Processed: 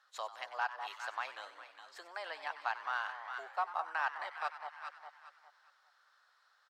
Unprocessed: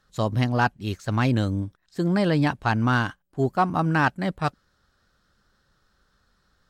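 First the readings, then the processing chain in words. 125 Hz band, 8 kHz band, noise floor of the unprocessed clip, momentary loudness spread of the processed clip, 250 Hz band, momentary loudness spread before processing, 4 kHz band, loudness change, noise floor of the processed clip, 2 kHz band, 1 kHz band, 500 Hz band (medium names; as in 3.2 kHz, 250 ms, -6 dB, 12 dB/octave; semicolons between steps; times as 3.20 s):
under -40 dB, no reading, -69 dBFS, 16 LU, under -40 dB, 8 LU, -12.5 dB, -15.5 dB, -71 dBFS, -10.5 dB, -11.0 dB, -20.0 dB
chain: low-pass 3.1 kHz 6 dB/octave; on a send: echo whose repeats swap between lows and highs 203 ms, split 1 kHz, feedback 52%, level -10.5 dB; on the sum: compression 2.5:1, threshold -35 dBFS, peak gain reduction 12.5 dB; inverse Chebyshev high-pass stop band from 220 Hz, stop band 60 dB; frequency-shifting echo 95 ms, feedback 60%, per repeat +140 Hz, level -14 dB; trim +1 dB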